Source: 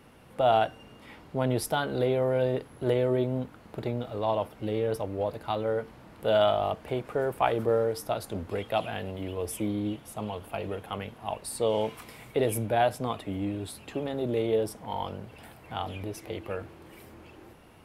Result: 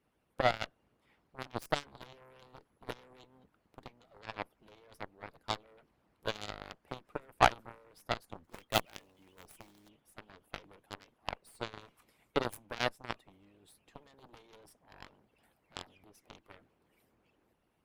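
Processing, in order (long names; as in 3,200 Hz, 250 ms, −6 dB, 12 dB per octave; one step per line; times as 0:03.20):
0:08.44–0:09.89: floating-point word with a short mantissa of 2 bits
harmonic and percussive parts rebalanced harmonic −17 dB
harmonic generator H 2 −11 dB, 3 −29 dB, 6 −43 dB, 7 −17 dB, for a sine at −11 dBFS
level +3 dB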